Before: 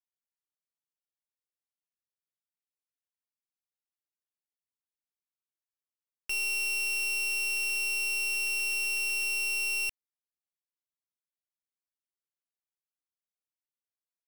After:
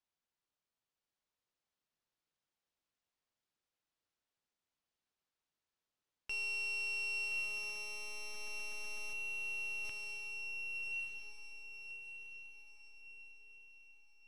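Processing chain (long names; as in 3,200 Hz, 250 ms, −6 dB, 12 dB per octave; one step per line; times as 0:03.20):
0:09.13–0:09.85: expanding power law on the bin magnitudes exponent 1.7
parametric band 2,000 Hz −2.5 dB
brickwall limiter −40.5 dBFS, peak gain reduction 12 dB
high-frequency loss of the air 99 metres
feedback delay with all-pass diffusion 1,157 ms, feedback 40%, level −3 dB
level +7 dB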